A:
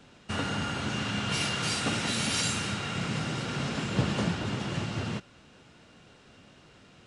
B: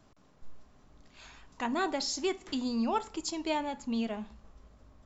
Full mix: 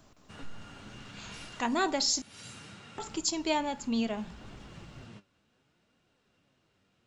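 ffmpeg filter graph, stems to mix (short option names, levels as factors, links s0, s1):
-filter_complex "[0:a]flanger=delay=2.6:depth=8.3:regen=65:speed=0.66:shape=triangular,volume=0.237[s0];[1:a]highshelf=f=5400:g=8.5,volume=1.26,asplit=3[s1][s2][s3];[s1]atrim=end=2.22,asetpts=PTS-STARTPTS,afade=t=out:st=2.216:d=0.004:c=hsin[s4];[s2]atrim=start=2.22:end=2.98,asetpts=PTS-STARTPTS,volume=0[s5];[s3]atrim=start=2.98,asetpts=PTS-STARTPTS,afade=t=in:d=0.004:c=hsin[s6];[s4][s5][s6]concat=n=3:v=0:a=1,asplit=2[s7][s8];[s8]apad=whole_len=311746[s9];[s0][s9]sidechaincompress=threshold=0.0126:ratio=8:attack=11:release=346[s10];[s10][s7]amix=inputs=2:normalize=0"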